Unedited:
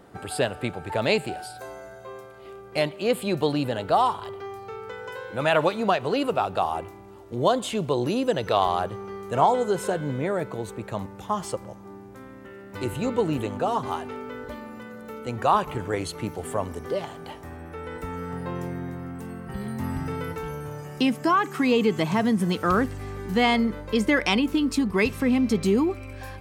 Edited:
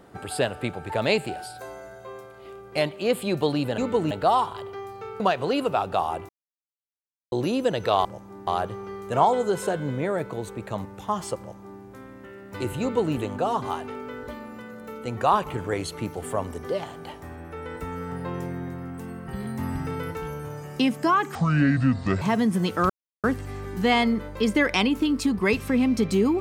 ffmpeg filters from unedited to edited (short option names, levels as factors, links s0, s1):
-filter_complex "[0:a]asplit=11[s0][s1][s2][s3][s4][s5][s6][s7][s8][s9][s10];[s0]atrim=end=3.782[s11];[s1]atrim=start=13.018:end=13.352[s12];[s2]atrim=start=3.778:end=4.872[s13];[s3]atrim=start=5.828:end=6.92,asetpts=PTS-STARTPTS,afade=t=out:st=1.088:d=0.004:c=hsin[s14];[s4]atrim=start=6.92:end=7.95,asetpts=PTS-STARTPTS,volume=0[s15];[s5]atrim=start=7.95:end=8.682,asetpts=PTS-STARTPTS,afade=t=in:d=0.004:c=hsin[s16];[s6]atrim=start=11.598:end=12.022[s17];[s7]atrim=start=8.678:end=21.564[s18];[s8]atrim=start=21.56:end=22.08,asetpts=PTS-STARTPTS,asetrate=26460,aresample=44100[s19];[s9]atrim=start=22.076:end=22.76,asetpts=PTS-STARTPTS,afade=t=out:st=0.68:d=0.004:c=hsin,apad=pad_dur=0.34[s20];[s10]atrim=start=22.76,asetpts=PTS-STARTPTS,afade=t=in:d=0.004:c=hsin[s21];[s11][s12]acrossfade=d=0.004:c1=hsin:c2=hsin[s22];[s22][s13]acrossfade=d=0.004:c1=hsin:c2=hsin[s23];[s14][s15][s16]concat=n=3:v=0:a=1[s24];[s23][s24]acrossfade=d=0.004:c1=hsin:c2=hsin[s25];[s25][s17]acrossfade=d=0.004:c1=hsin:c2=hsin[s26];[s26][s18]acrossfade=d=0.004:c1=hsin:c2=hsin[s27];[s27][s19]acrossfade=d=0.004:c1=hsin:c2=hsin[s28];[s20][s21]concat=n=2:v=0:a=1[s29];[s28][s29]acrossfade=d=0.004:c1=hsin:c2=hsin"